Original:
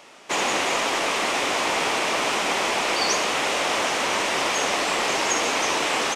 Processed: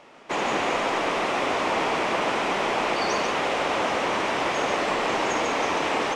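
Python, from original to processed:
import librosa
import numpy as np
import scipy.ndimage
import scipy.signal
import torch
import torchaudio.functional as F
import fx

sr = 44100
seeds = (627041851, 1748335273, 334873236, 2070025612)

p1 = fx.lowpass(x, sr, hz=1600.0, slope=6)
p2 = fx.low_shelf(p1, sr, hz=180.0, db=3.0)
y = p2 + fx.echo_single(p2, sr, ms=142, db=-5.5, dry=0)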